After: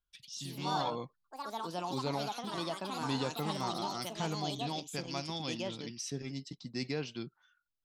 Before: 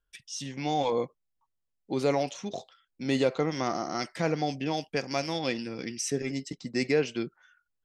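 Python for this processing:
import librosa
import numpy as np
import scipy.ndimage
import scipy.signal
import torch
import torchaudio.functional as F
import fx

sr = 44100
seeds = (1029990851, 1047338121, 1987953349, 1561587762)

y = fx.echo_pitch(x, sr, ms=123, semitones=4, count=3, db_per_echo=-3.0)
y = fx.graphic_eq(y, sr, hz=(125, 500, 1000, 2000, 4000, 8000), db=(5, -7, 5, -7, 9, -6))
y = y * 10.0 ** (-8.0 / 20.0)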